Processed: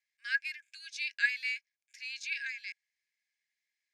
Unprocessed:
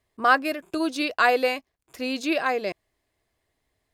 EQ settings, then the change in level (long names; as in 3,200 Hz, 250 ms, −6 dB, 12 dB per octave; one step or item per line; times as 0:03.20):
Chebyshev high-pass with heavy ripple 1,600 Hz, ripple 9 dB
high-frequency loss of the air 71 metres
0.0 dB